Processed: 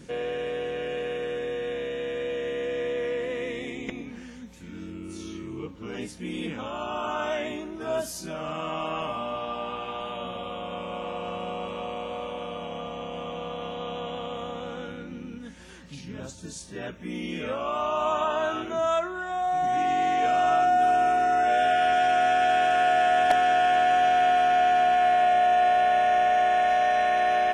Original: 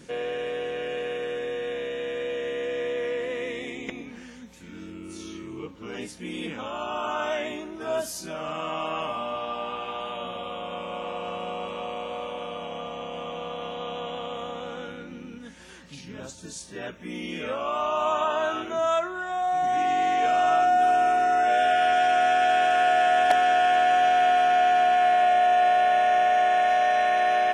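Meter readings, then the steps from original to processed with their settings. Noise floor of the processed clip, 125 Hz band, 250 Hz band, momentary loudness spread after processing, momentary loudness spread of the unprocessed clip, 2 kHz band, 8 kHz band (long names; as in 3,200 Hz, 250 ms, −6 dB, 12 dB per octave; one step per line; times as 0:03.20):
−42 dBFS, +3.5 dB, +1.5 dB, 17 LU, 18 LU, −1.5 dB, −1.5 dB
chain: low-shelf EQ 230 Hz +7.5 dB
level −1.5 dB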